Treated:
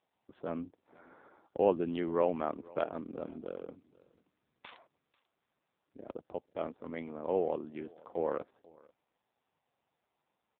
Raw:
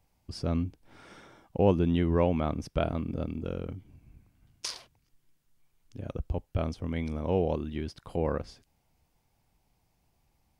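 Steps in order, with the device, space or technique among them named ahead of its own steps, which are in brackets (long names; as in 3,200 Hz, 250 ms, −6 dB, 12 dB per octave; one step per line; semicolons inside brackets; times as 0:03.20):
adaptive Wiener filter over 15 samples
0:01.83–0:02.47: high-shelf EQ 9,100 Hz −5 dB
0:06.48–0:07.57: noise gate with hold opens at −38 dBFS
satellite phone (band-pass filter 370–3,200 Hz; single-tap delay 491 ms −24 dB; AMR narrowband 5.9 kbit/s 8,000 Hz)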